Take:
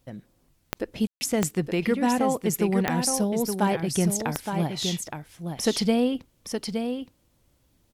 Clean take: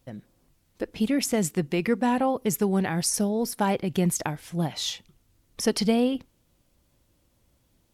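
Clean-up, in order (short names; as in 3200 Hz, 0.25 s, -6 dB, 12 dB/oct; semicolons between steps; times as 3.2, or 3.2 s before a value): de-click; room tone fill 1.07–1.21; inverse comb 0.868 s -6.5 dB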